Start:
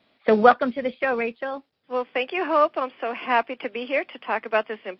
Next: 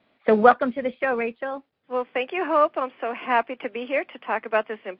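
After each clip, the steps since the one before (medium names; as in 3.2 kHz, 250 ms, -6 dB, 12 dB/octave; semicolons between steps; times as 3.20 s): low-pass 2.8 kHz 12 dB/octave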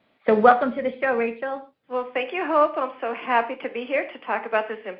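gated-style reverb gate 170 ms falling, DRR 8.5 dB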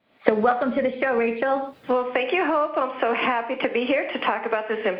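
recorder AGC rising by 77 dB/s; trim -6 dB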